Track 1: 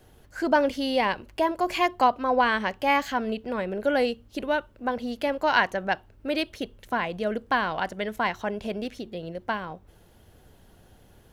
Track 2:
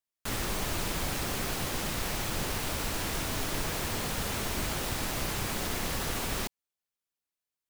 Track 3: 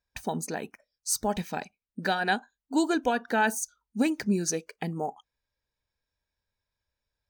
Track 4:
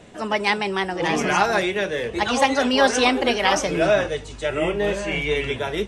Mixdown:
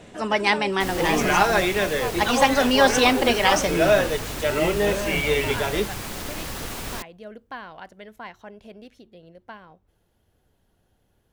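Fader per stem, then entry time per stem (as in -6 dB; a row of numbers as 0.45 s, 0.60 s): -12.5 dB, 0.0 dB, mute, +0.5 dB; 0.00 s, 0.55 s, mute, 0.00 s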